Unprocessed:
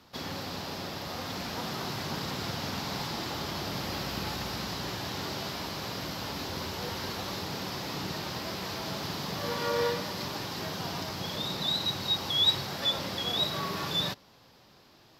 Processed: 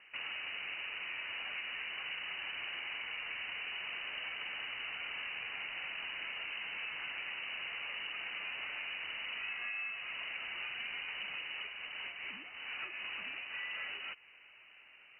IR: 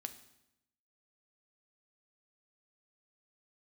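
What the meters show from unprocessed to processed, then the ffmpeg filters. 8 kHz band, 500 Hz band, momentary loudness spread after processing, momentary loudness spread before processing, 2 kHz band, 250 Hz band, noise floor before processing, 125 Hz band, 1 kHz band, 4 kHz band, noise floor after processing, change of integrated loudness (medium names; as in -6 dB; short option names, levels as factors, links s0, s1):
under -40 dB, -22.5 dB, 3 LU, 7 LU, +2.0 dB, -27.0 dB, -58 dBFS, under -30 dB, -14.0 dB, -10.5 dB, -59 dBFS, -7.5 dB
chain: -af "highpass=f=340:p=1,highshelf=f=2000:g=-11,acompressor=threshold=0.00794:ratio=10,lowpass=f=2600:t=q:w=0.5098,lowpass=f=2600:t=q:w=0.6013,lowpass=f=2600:t=q:w=0.9,lowpass=f=2600:t=q:w=2.563,afreqshift=-3100,volume=1.68"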